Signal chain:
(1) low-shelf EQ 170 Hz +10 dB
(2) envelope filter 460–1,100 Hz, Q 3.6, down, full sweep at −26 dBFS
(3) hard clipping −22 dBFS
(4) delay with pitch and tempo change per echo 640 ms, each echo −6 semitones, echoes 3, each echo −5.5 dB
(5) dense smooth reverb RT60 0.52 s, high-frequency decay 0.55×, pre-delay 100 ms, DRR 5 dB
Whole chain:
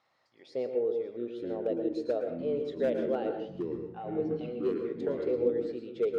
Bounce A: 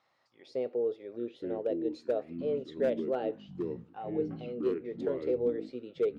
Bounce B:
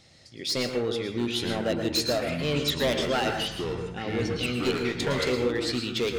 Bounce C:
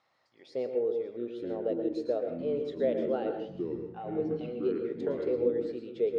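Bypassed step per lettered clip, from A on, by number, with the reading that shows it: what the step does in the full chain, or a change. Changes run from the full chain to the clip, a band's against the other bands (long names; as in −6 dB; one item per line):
5, change in integrated loudness −1.5 LU
2, 4 kHz band +16.5 dB
3, distortion level −24 dB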